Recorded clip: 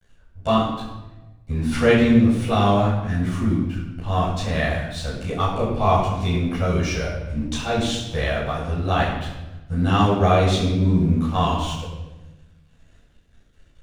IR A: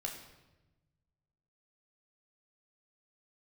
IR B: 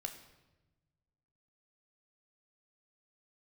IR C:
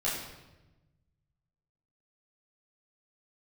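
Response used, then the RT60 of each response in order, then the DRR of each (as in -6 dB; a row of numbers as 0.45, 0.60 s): C; 1.1, 1.1, 1.0 s; 0.5, 5.0, -9.0 dB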